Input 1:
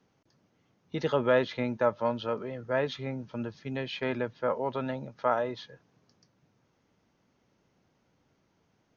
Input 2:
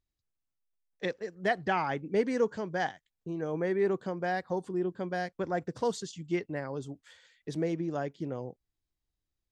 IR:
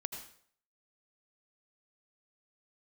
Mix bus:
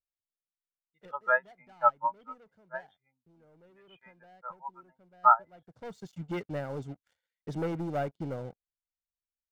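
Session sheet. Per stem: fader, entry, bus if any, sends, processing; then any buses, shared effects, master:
-7.5 dB, 0.00 s, no send, high-order bell 1.7 kHz +15.5 dB 2.6 oct; spectral contrast expander 2.5:1
-2.0 dB, 0.00 s, no send, treble shelf 2.4 kHz -11.5 dB; waveshaping leveller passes 3; auto duck -19 dB, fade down 1.55 s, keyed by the first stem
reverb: none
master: comb 1.4 ms, depth 36%; upward expansion 1.5:1, over -45 dBFS

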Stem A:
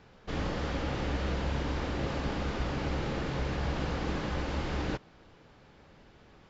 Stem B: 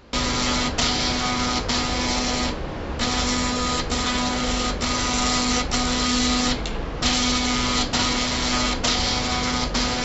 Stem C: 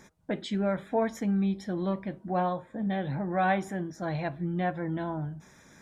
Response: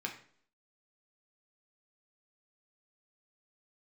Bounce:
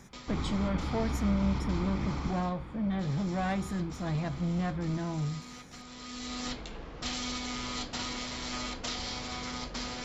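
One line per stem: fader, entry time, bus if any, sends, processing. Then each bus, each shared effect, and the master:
2.25 s -4 dB -> 2.47 s -15 dB, 0.00 s, no send, Bessel low-pass 2.6 kHz; comb 0.9 ms
-15.5 dB, 0.00 s, send -17 dB, auto duck -15 dB, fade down 0.25 s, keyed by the third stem
-4.0 dB, 0.00 s, no send, tone controls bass +10 dB, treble +6 dB; saturation -22.5 dBFS, distortion -13 dB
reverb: on, RT60 0.55 s, pre-delay 4 ms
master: none

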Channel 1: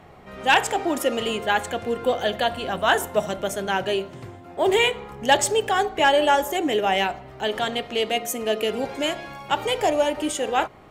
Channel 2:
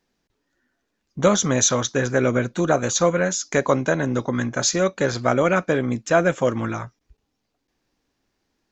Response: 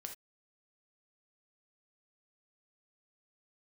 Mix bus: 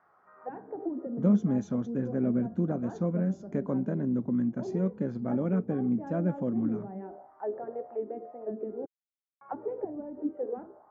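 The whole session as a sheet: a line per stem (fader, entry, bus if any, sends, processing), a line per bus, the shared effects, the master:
-6.0 dB, 0.00 s, muted 8.86–9.41 s, no send, inverse Chebyshev low-pass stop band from 3.3 kHz, stop band 40 dB; bass shelf 460 Hz +5 dB; de-hum 65.59 Hz, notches 26
+1.0 dB, 0.00 s, no send, none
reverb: none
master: band-stop 3.8 kHz, Q 15; auto-wah 210–1500 Hz, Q 3.2, down, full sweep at -22.5 dBFS

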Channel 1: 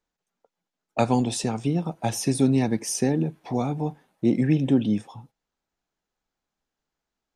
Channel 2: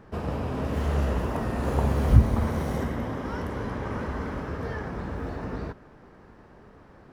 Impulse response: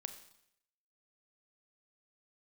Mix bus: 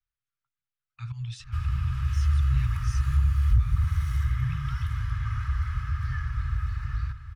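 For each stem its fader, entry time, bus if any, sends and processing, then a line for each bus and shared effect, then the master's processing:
-8.5 dB, 0.00 s, no send, no echo send, low-pass 4.2 kHz 12 dB/octave; band-stop 420 Hz; slow attack 115 ms
-1.5 dB, 1.40 s, no send, echo send -12 dB, comb 2.4 ms, depth 45%; saturation -7 dBFS, distortion -17 dB; compression 4:1, threshold -25 dBFS, peak gain reduction 12 dB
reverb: none
echo: delay 760 ms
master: Chebyshev band-stop 130–1200 Hz, order 4; bass shelf 370 Hz +8.5 dB

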